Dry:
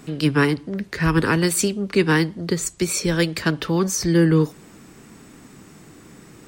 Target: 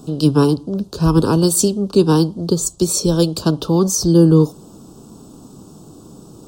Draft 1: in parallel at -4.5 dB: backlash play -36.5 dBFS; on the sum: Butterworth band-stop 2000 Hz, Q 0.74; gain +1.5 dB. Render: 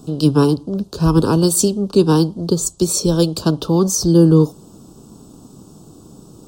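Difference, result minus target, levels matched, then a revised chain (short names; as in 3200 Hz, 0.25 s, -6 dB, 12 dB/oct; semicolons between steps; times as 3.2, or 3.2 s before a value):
backlash: distortion +9 dB
in parallel at -4.5 dB: backlash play -46 dBFS; on the sum: Butterworth band-stop 2000 Hz, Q 0.74; gain +1.5 dB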